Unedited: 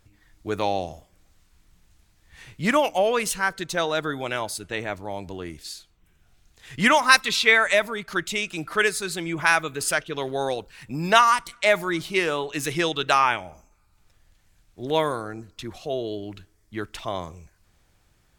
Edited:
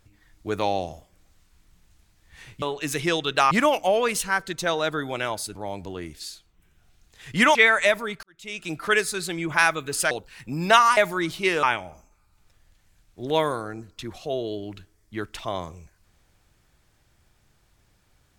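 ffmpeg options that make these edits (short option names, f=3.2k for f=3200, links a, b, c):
-filter_complex "[0:a]asplit=9[a][b][c][d][e][f][g][h][i];[a]atrim=end=2.622[j];[b]atrim=start=12.338:end=13.232[k];[c]atrim=start=2.618:end=4.662[l];[d]atrim=start=4.988:end=6.992[m];[e]atrim=start=7.428:end=8.11,asetpts=PTS-STARTPTS,afade=t=out:st=0.678:d=0.004:c=hsin[n];[f]atrim=start=8.11:end=9.992,asetpts=PTS-STARTPTS,afade=t=in:d=0.45:c=qua[o];[g]atrim=start=10.528:end=11.392[p];[h]atrim=start=11.678:end=12.342[q];[i]atrim=start=13.228[r];[j][k]acrossfade=d=0.004:c1=hsin:c2=hsin[s];[s][l]acrossfade=d=0.004:c1=hsin:c2=hsin[t];[t][m]acrossfade=d=0.004:c1=hsin:c2=hsin[u];[n][o]concat=n=2:v=0:a=1[v];[u][v]acrossfade=d=0.004:c1=hsin:c2=hsin[w];[w][p]acrossfade=d=0.004:c1=hsin:c2=hsin[x];[x][q]acrossfade=d=0.004:c1=hsin:c2=hsin[y];[y][r]acrossfade=d=0.004:c1=hsin:c2=hsin"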